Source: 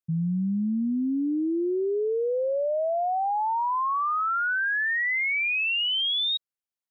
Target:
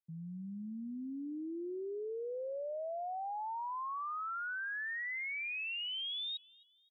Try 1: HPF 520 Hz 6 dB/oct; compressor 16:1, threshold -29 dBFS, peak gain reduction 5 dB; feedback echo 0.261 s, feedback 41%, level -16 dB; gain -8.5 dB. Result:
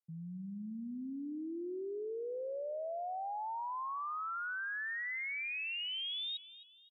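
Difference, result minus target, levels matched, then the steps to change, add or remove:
echo-to-direct +8 dB
change: feedback echo 0.261 s, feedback 41%, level -24 dB

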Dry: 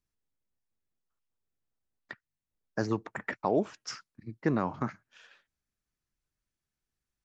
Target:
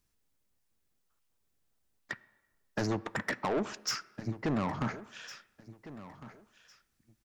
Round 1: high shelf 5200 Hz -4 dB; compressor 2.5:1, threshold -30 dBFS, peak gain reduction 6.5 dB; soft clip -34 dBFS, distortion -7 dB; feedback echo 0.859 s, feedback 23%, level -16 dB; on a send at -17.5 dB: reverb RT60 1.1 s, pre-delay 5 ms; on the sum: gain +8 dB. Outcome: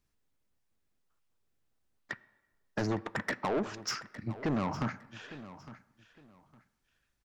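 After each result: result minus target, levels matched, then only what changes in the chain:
echo 0.547 s early; 8000 Hz band -2.5 dB
change: feedback echo 1.406 s, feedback 23%, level -16 dB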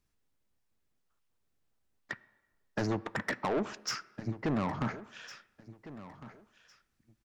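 8000 Hz band -3.0 dB
change: high shelf 5200 Hz +3.5 dB

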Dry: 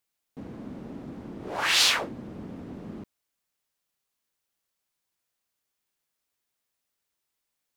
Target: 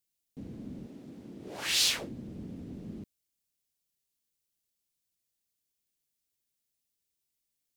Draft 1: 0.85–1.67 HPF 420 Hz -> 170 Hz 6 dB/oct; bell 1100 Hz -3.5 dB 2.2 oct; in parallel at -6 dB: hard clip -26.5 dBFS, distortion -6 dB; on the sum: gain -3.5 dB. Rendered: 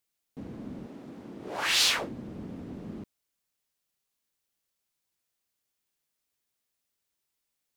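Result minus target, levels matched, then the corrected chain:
1000 Hz band +6.0 dB
0.85–1.67 HPF 420 Hz -> 170 Hz 6 dB/oct; bell 1100 Hz -15.5 dB 2.2 oct; in parallel at -6 dB: hard clip -26.5 dBFS, distortion -8 dB; on the sum: gain -3.5 dB

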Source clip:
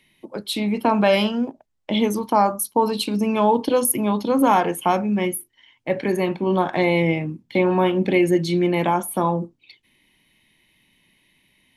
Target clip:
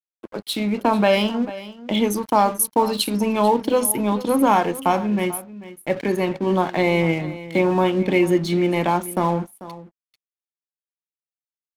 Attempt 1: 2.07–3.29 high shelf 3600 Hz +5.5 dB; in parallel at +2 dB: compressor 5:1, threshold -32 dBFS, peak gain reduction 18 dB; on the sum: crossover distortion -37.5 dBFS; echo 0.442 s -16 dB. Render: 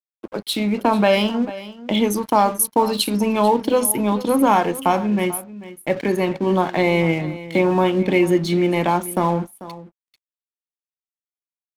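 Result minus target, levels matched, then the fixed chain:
compressor: peak gain reduction -9 dB
2.07–3.29 high shelf 3600 Hz +5.5 dB; in parallel at +2 dB: compressor 5:1, threshold -43 dBFS, peak gain reduction 27 dB; on the sum: crossover distortion -37.5 dBFS; echo 0.442 s -16 dB

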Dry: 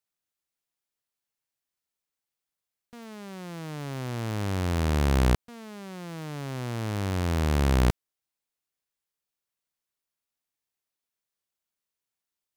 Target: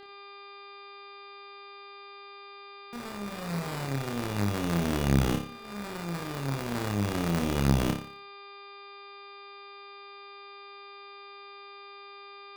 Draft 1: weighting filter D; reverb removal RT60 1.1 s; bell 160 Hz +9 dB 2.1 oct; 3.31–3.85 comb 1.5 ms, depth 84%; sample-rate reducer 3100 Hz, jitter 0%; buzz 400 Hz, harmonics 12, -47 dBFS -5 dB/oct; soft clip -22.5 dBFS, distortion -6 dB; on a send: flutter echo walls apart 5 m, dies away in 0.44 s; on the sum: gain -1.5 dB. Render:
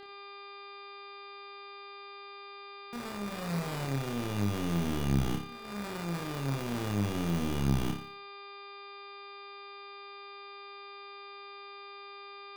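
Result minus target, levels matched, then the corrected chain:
soft clip: distortion +8 dB
weighting filter D; reverb removal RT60 1.1 s; bell 160 Hz +9 dB 2.1 oct; 3.31–3.85 comb 1.5 ms, depth 84%; sample-rate reducer 3100 Hz, jitter 0%; buzz 400 Hz, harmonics 12, -47 dBFS -5 dB/oct; soft clip -12 dBFS, distortion -15 dB; on a send: flutter echo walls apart 5 m, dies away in 0.44 s; on the sum: gain -1.5 dB

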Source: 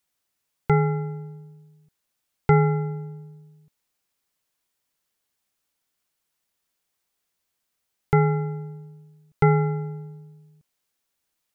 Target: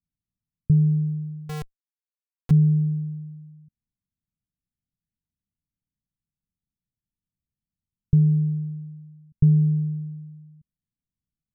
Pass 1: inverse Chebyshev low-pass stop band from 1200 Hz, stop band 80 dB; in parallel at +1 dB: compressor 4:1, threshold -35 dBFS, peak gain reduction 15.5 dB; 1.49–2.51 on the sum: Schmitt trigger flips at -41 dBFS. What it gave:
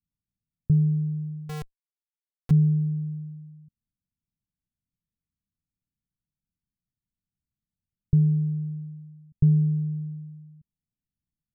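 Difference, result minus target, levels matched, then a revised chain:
compressor: peak gain reduction +8.5 dB
inverse Chebyshev low-pass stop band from 1200 Hz, stop band 80 dB; in parallel at +1 dB: compressor 4:1, threshold -24 dBFS, peak gain reduction 7 dB; 1.49–2.51 on the sum: Schmitt trigger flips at -41 dBFS

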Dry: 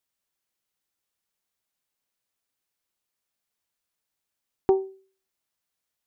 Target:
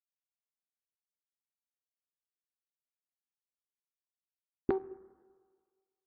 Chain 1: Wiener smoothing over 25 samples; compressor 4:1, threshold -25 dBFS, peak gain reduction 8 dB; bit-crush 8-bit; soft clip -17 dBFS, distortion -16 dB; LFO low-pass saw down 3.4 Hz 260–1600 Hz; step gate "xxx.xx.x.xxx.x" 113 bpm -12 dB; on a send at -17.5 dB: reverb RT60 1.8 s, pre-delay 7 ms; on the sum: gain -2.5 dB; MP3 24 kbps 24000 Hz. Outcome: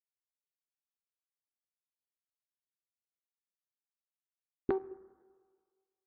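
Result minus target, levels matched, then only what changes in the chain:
soft clip: distortion +11 dB
change: soft clip -9.5 dBFS, distortion -27 dB

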